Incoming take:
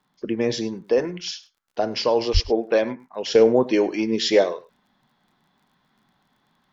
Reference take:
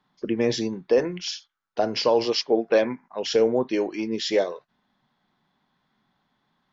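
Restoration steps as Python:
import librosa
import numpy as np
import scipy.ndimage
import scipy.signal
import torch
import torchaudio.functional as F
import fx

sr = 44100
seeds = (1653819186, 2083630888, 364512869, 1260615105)

y = fx.fix_declick_ar(x, sr, threshold=6.5)
y = fx.highpass(y, sr, hz=140.0, slope=24, at=(2.33, 2.45), fade=0.02)
y = fx.fix_echo_inverse(y, sr, delay_ms=103, level_db=-19.5)
y = fx.fix_level(y, sr, at_s=3.35, step_db=-5.0)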